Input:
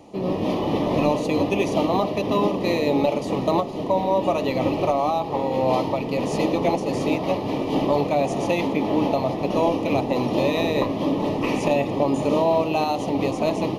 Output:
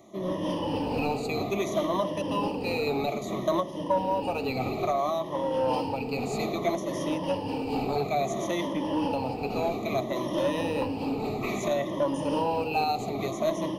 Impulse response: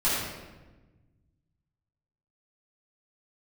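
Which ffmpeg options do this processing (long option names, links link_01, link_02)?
-filter_complex "[0:a]afftfilt=real='re*pow(10,15/40*sin(2*PI*(1.2*log(max(b,1)*sr/1024/100)/log(2)-(-0.6)*(pts-256)/sr)))':imag='im*pow(10,15/40*sin(2*PI*(1.2*log(max(b,1)*sr/1024/100)/log(2)-(-0.6)*(pts-256)/sr)))':win_size=1024:overlap=0.75,highshelf=frequency=9400:gain=7.5,acrossover=split=110|610|3100[link_01][link_02][link_03][link_04];[link_02]asoftclip=type=tanh:threshold=-17dB[link_05];[link_01][link_05][link_03][link_04]amix=inputs=4:normalize=0,volume=-8dB"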